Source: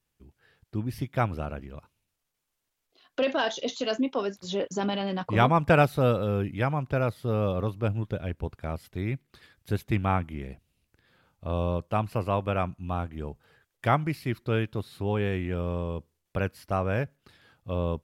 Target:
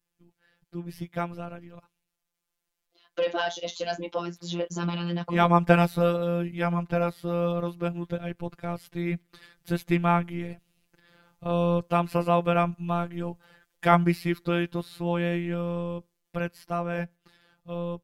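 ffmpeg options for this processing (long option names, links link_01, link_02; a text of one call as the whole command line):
ffmpeg -i in.wav -af "afftfilt=real='hypot(re,im)*cos(PI*b)':imag='0':win_size=1024:overlap=0.75,dynaudnorm=framelen=690:gausssize=11:maxgain=11.5dB" out.wav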